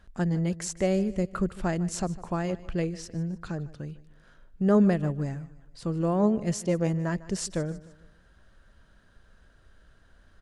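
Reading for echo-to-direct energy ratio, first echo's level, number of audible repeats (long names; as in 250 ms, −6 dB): −17.5 dB, −18.5 dB, 3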